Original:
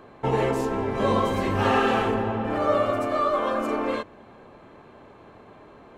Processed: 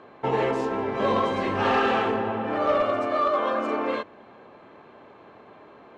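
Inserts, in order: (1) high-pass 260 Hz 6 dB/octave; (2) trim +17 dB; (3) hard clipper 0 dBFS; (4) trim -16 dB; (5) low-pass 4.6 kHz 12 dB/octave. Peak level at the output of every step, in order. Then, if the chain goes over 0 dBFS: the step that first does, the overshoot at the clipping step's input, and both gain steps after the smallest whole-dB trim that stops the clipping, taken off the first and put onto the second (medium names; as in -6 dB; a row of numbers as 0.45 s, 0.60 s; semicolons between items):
-11.0 dBFS, +6.0 dBFS, 0.0 dBFS, -16.0 dBFS, -15.5 dBFS; step 2, 6.0 dB; step 2 +11 dB, step 4 -10 dB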